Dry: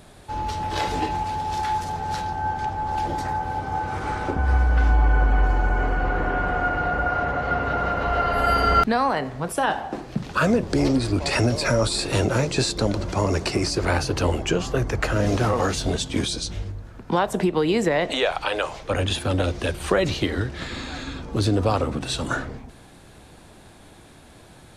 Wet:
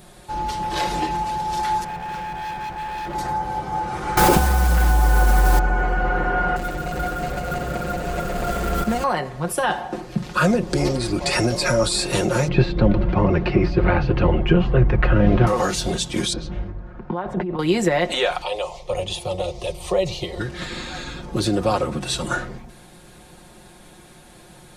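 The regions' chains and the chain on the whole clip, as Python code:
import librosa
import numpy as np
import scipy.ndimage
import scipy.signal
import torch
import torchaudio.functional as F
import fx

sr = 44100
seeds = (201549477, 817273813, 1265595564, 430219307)

y = fx.chain(x, sr, fx.savgol(points=25),
    fx.overload_stage(gain_db=29.5), at=(1.84, 3.15))
y = fx.chain(y, sr, fx.quant_dither(seeds[0], bits=6, dither='none'),
    fx.env_flatten(amount_pct=100), at=(4.17, 5.59))
y = fx.chain(y, sr, fx.median_filter(points=41),
    fx.peak_eq(hz=7600.0, db=6.5, octaves=0.46),
    fx.echo_single(ms=380, db=-5.0), at=(6.56, 9.04))
y = fx.chain(y, sr, fx.lowpass(hz=3000.0, slope=24),
    fx.low_shelf(hz=200.0, db=12.0), at=(12.48, 15.47))
y = fx.chain(y, sr, fx.lowpass(hz=1700.0, slope=12),
    fx.over_compress(threshold_db=-26.0, ratio=-1.0), at=(16.33, 17.59))
y = fx.chain(y, sr, fx.high_shelf(hz=8200.0, db=-10.0),
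    fx.fixed_phaser(hz=640.0, stages=4), at=(18.42, 20.4))
y = fx.high_shelf(y, sr, hz=8400.0, db=6.5)
y = y + 0.65 * np.pad(y, (int(5.6 * sr / 1000.0), 0))[:len(y)]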